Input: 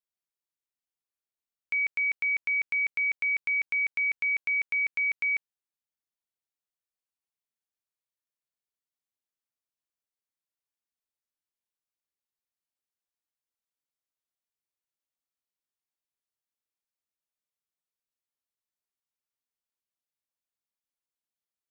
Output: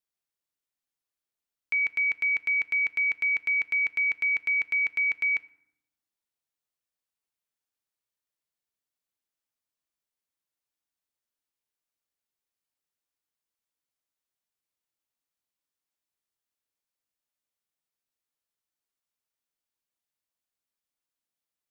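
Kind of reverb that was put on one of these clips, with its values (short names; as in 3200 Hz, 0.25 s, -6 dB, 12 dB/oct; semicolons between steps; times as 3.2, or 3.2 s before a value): FDN reverb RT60 0.8 s, low-frequency decay 1.3×, high-frequency decay 0.6×, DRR 15.5 dB; gain +2 dB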